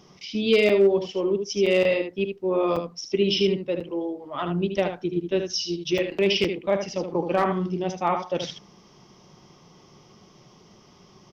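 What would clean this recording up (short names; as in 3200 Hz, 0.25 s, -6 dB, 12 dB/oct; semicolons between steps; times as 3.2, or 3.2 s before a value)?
clip repair -11 dBFS; interpolate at 0.69/1.66/2.76/3.8/5.98/6.44, 5.1 ms; inverse comb 76 ms -7.5 dB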